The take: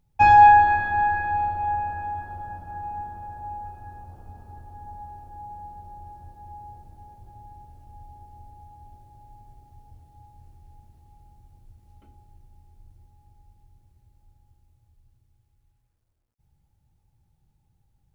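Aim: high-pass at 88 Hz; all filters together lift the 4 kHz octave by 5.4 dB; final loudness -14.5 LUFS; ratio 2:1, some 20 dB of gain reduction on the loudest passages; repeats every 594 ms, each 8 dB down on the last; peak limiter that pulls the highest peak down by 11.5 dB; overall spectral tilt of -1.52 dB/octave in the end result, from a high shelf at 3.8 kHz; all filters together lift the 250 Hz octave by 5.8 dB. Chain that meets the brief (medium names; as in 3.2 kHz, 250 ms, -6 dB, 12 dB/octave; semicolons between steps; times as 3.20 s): high-pass 88 Hz; peaking EQ 250 Hz +8 dB; treble shelf 3.8 kHz +3.5 dB; peaking EQ 4 kHz +4.5 dB; compression 2:1, threshold -47 dBFS; peak limiter -34.5 dBFS; feedback delay 594 ms, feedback 40%, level -8 dB; trim +30 dB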